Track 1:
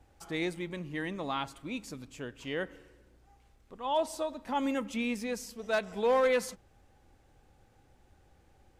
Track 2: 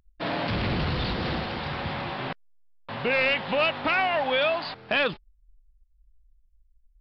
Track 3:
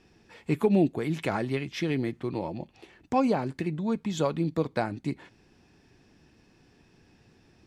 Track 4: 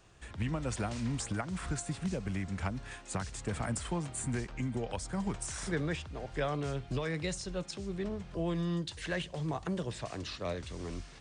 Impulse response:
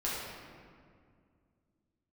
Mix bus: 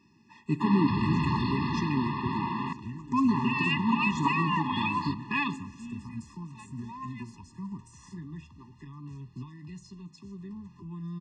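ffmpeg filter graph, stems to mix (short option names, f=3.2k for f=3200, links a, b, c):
-filter_complex "[0:a]adelay=850,volume=-11dB[a];[1:a]highshelf=f=3.5k:g=-6.5,adelay=400,volume=1.5dB,asplit=2[b][c];[c]volume=-23.5dB[d];[2:a]volume=-0.5dB,asplit=2[e][f];[f]volume=-16dB[g];[3:a]acrossover=split=270[h][i];[i]acompressor=threshold=-44dB:ratio=6[j];[h][j]amix=inputs=2:normalize=0,asoftclip=type=tanh:threshold=-23.5dB,flanger=delay=9.2:depth=1.8:regen=-74:speed=0.28:shape=triangular,adelay=2450,volume=2.5dB[k];[4:a]atrim=start_sample=2205[l];[d][g]amix=inputs=2:normalize=0[m];[m][l]afir=irnorm=-1:irlink=0[n];[a][b][e][k][n]amix=inputs=5:normalize=0,highpass=120,equalizer=f=240:t=q:w=4:g=4,equalizer=f=350:t=q:w=4:g=-8,equalizer=f=630:t=q:w=4:g=-10,equalizer=f=1k:t=q:w=4:g=6,equalizer=f=1.6k:t=q:w=4:g=-8,equalizer=f=3.5k:t=q:w=4:g=-6,lowpass=f=7.1k:w=0.5412,lowpass=f=7.1k:w=1.3066,afftfilt=real='re*eq(mod(floor(b*sr/1024/410),2),0)':imag='im*eq(mod(floor(b*sr/1024/410),2),0)':win_size=1024:overlap=0.75"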